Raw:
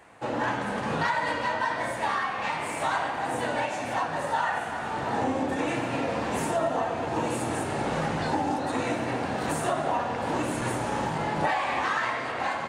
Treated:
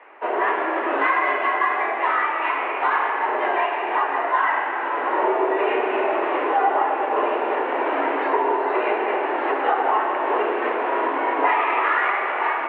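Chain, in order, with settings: on a send at -8.5 dB: reverb RT60 2.0 s, pre-delay 81 ms; on the sum: mistuned SSB +120 Hz 190–2600 Hz; gain +6.5 dB

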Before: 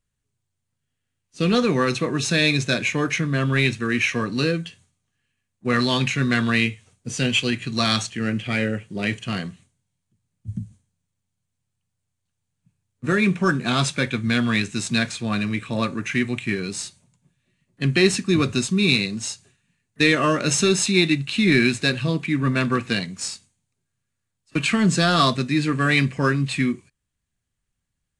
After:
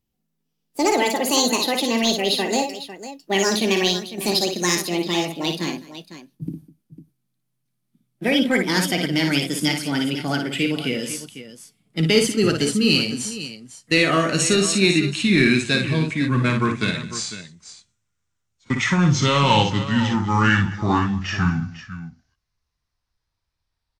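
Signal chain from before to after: speed glide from 180% -> 55%; tapped delay 56/203/501 ms -6/-19.5/-13 dB

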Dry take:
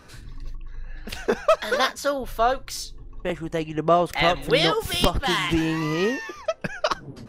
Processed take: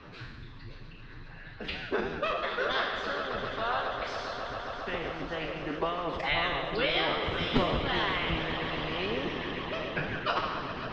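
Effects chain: spectral trails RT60 0.82 s; time stretch by phase-locked vocoder 1.5×; bell 610 Hz -2.5 dB 2.1 oct; on a send: swelling echo 0.135 s, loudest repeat 5, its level -17.5 dB; on the sum: harmonic-percussive split harmonic -18 dB; LPF 3700 Hz 24 dB/oct; three-band squash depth 40%; gain -1.5 dB

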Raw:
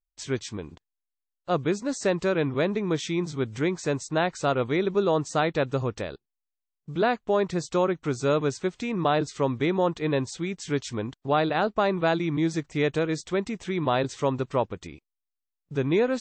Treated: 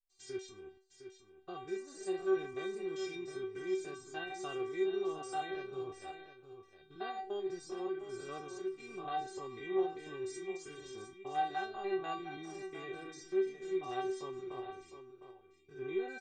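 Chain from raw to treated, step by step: stepped spectrum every 0.1 s; metallic resonator 380 Hz, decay 0.32 s, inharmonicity 0.002; echo 0.708 s -10 dB; gain +4 dB

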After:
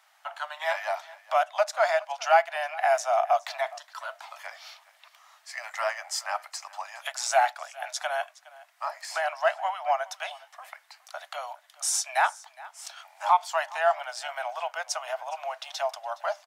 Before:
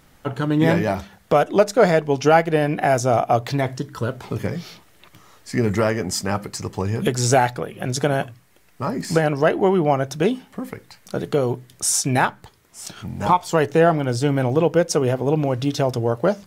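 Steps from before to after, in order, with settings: steep high-pass 630 Hz 96 dB/oct; high shelf 8400 Hz -8 dB; echo 0.415 s -20.5 dB; gain -3.5 dB

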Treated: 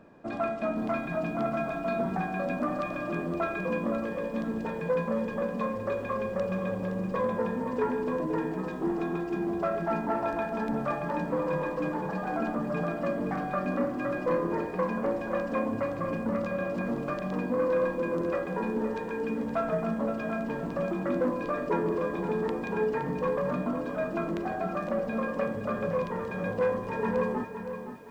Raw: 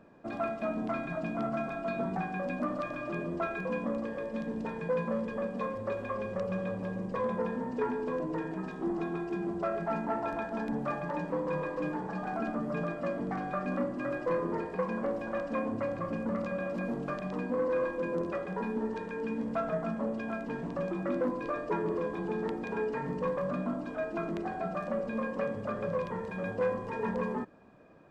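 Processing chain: on a send at -23.5 dB: reverb RT60 3.2 s, pre-delay 3 ms; on the sum: lo-fi delay 0.517 s, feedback 35%, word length 10-bit, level -9.5 dB; gain +3 dB

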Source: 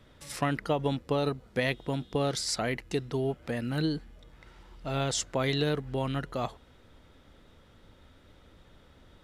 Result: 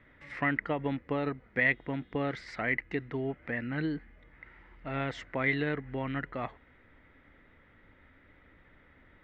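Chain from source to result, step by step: synth low-pass 2000 Hz, resonance Q 5.3; bell 280 Hz +5 dB 0.35 oct; gain -5.5 dB

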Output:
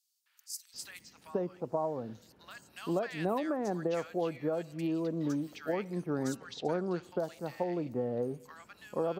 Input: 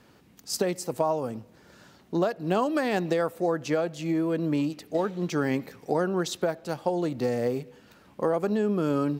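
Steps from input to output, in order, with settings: 6.36–7.03 LPF 6800 Hz 12 dB/oct; three bands offset in time highs, mids, lows 0.26/0.74 s, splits 1400/5000 Hz; gain -6.5 dB

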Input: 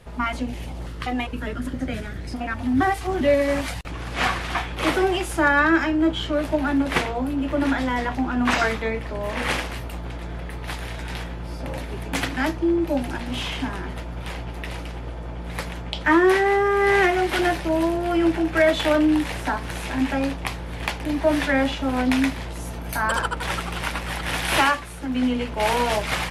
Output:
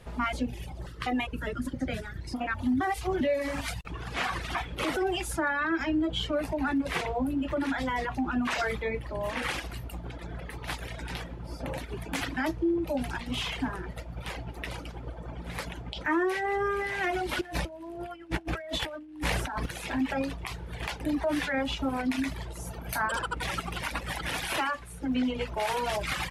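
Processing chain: limiter -17 dBFS, peak gain reduction 8 dB; 17.41–19.66 negative-ratio compressor -29 dBFS, ratio -0.5; reverb removal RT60 1.7 s; gain -2 dB

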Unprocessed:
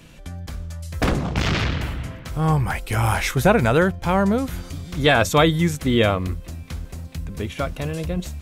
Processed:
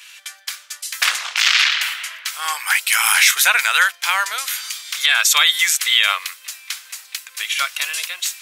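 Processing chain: Bessel high-pass 2300 Hz, order 4; 3.97–5.39 compressor, threshold -27 dBFS, peak gain reduction 8.5 dB; maximiser +19 dB; mismatched tape noise reduction decoder only; gain -1 dB

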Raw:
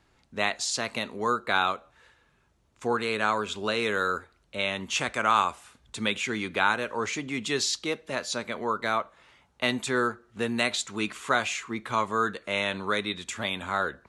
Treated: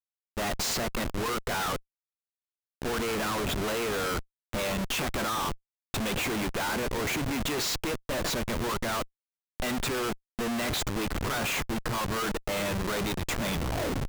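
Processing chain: tape stop at the end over 0.56 s; Schmitt trigger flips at -35.5 dBFS

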